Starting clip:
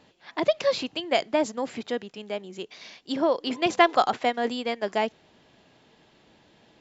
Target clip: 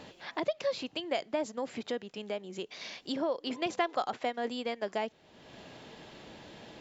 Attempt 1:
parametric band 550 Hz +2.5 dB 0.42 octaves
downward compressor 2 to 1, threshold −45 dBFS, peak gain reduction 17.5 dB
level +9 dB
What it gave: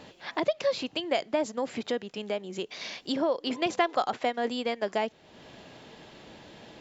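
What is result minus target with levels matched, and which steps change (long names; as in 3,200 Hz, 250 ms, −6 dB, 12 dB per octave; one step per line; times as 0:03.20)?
downward compressor: peak gain reduction −5 dB
change: downward compressor 2 to 1, threshold −54.5 dBFS, peak gain reduction 22.5 dB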